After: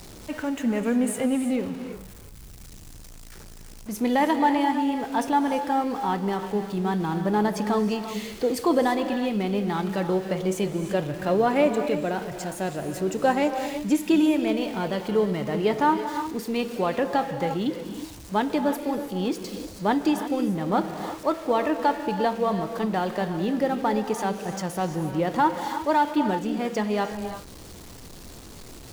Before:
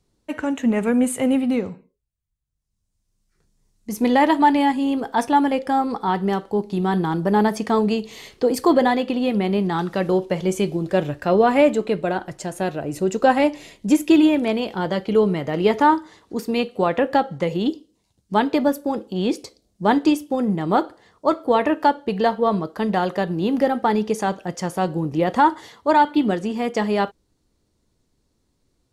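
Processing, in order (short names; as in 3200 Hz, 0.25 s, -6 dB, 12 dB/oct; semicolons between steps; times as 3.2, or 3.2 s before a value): zero-crossing step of -31.5 dBFS; non-linear reverb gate 0.37 s rising, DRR 8 dB; gain -6 dB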